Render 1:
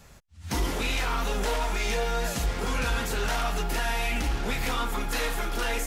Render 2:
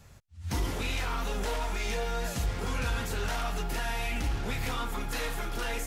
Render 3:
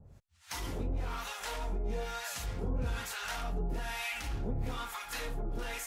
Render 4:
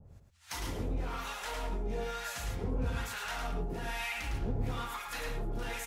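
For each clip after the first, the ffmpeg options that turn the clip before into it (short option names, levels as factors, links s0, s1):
-af "equalizer=f=96:w=1.5:g=9.5,volume=0.562"
-filter_complex "[0:a]acrossover=split=740[s0][s1];[s0]aeval=exprs='val(0)*(1-1/2+1/2*cos(2*PI*1.1*n/s))':c=same[s2];[s1]aeval=exprs='val(0)*(1-1/2-1/2*cos(2*PI*1.1*n/s))':c=same[s3];[s2][s3]amix=inputs=2:normalize=0"
-af "aecho=1:1:107:0.562,adynamicequalizer=threshold=0.00224:dfrequency=3200:dqfactor=0.7:tfrequency=3200:tqfactor=0.7:attack=5:release=100:ratio=0.375:range=2:mode=cutabove:tftype=highshelf"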